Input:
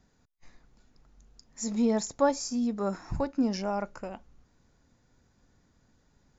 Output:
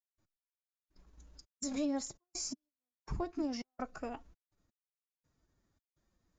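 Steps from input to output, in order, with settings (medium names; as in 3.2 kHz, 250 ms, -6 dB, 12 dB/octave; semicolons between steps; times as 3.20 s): trance gate ".x...xxx.xxx" 83 bpm -60 dB; formant-preserving pitch shift +4 st; compression 2:1, threshold -38 dBFS, peak gain reduction 9 dB; gate -59 dBFS, range -11 dB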